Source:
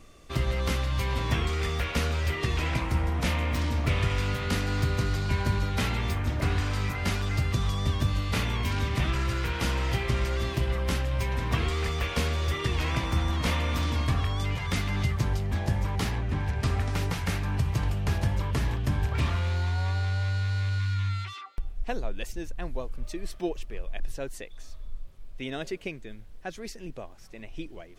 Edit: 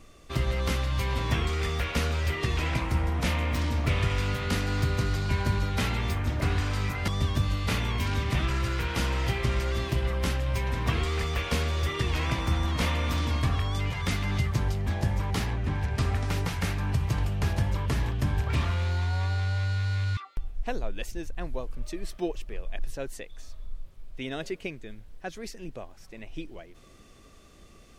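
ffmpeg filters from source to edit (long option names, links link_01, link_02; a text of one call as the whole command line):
ffmpeg -i in.wav -filter_complex "[0:a]asplit=3[link_01][link_02][link_03];[link_01]atrim=end=7.082[link_04];[link_02]atrim=start=7.728:end=20.822[link_05];[link_03]atrim=start=21.378[link_06];[link_04][link_05]acrossfade=duration=0.004:curve1=hsin:curve2=hsin[link_07];[link_07][link_06]acrossfade=duration=0.004:curve1=hsin:curve2=hsin" out.wav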